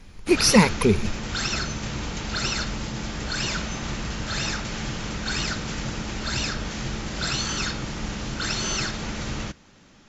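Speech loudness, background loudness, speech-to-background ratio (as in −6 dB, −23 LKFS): −19.5 LKFS, −28.5 LKFS, 9.0 dB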